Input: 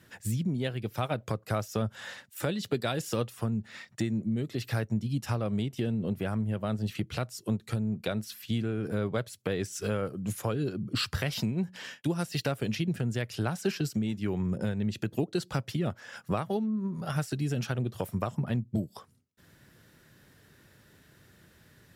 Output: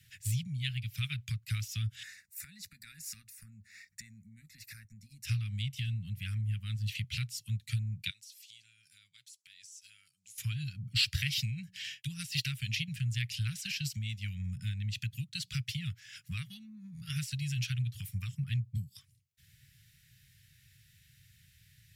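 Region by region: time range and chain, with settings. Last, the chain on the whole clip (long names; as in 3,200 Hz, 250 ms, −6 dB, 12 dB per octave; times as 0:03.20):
0:02.03–0:05.25: downward compressor 3 to 1, threshold −33 dBFS + phaser with its sweep stopped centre 630 Hz, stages 8
0:08.10–0:10.38: resonant band-pass 6,600 Hz, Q 1.3 + downward compressor 4 to 1, threshold −49 dBFS
whole clip: Chebyshev band-stop filter 130–2,200 Hz, order 3; dynamic equaliser 3,200 Hz, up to +5 dB, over −52 dBFS, Q 0.73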